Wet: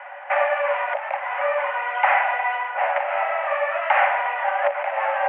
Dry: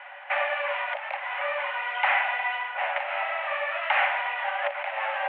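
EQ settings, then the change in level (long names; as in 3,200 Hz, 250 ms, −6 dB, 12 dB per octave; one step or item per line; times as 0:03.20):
Gaussian smoothing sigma 3.1 samples
high-frequency loss of the air 150 metres
low-shelf EQ 470 Hz +8.5 dB
+6.5 dB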